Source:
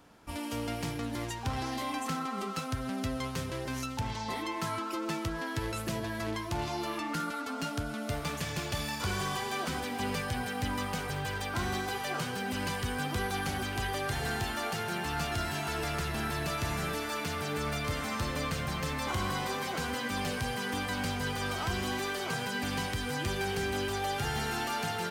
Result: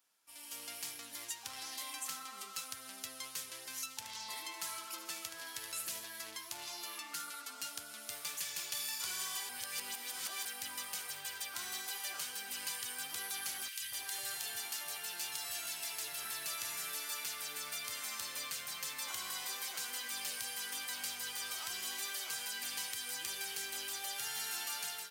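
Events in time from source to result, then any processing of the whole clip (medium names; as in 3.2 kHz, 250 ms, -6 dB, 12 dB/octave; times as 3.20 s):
3.97–6.04 s: feedback delay 74 ms, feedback 57%, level -9 dB
9.49–10.45 s: reverse
13.68–16.25 s: three bands offset in time highs, lows, mids 130/240 ms, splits 210/1500 Hz
whole clip: differentiator; level rider gain up to 10.5 dB; trim -7.5 dB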